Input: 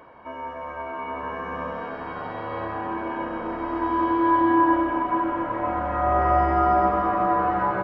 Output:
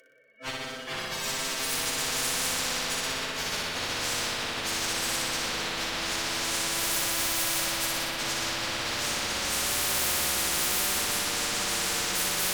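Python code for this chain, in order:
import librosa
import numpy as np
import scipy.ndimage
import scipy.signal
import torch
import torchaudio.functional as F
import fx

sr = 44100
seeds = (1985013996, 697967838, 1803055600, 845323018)

p1 = fx.bin_expand(x, sr, power=2.0)
p2 = fx.dereverb_blind(p1, sr, rt60_s=1.5)
p3 = scipy.signal.sosfilt(scipy.signal.cheby1(3, 1.0, [580.0, 1400.0], 'bandstop', fs=sr, output='sos'), p2)
p4 = fx.bass_treble(p3, sr, bass_db=-12, treble_db=-3)
p5 = fx.cheby_harmonics(p4, sr, harmonics=(3, 4, 5, 8), levels_db=(-16, -29, -20, -41), full_scale_db=-20.0)
p6 = fx.fuzz(p5, sr, gain_db=44.0, gate_db=-48.0)
p7 = p5 + (p6 * 10.0 ** (-11.0 / 20.0))
p8 = fx.tube_stage(p7, sr, drive_db=23.0, bias=0.3)
p9 = fx.stretch_vocoder_free(p8, sr, factor=1.6)
p10 = fx.doubler(p9, sr, ms=37.0, db=-10.5)
p11 = p10 + fx.room_flutter(p10, sr, wall_m=10.3, rt60_s=1.2, dry=0)
y = fx.spectral_comp(p11, sr, ratio=10.0)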